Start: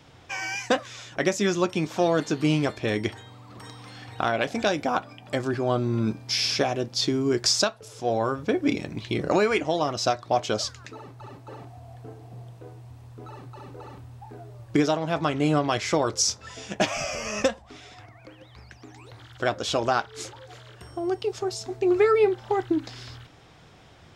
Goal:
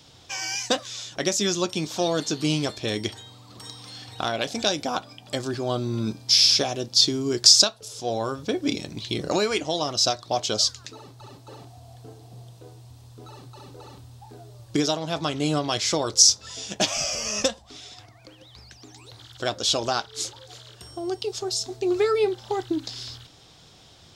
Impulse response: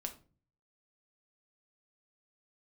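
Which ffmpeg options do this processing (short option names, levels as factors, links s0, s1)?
-af "highshelf=f=2900:t=q:w=1.5:g=9,volume=0.794"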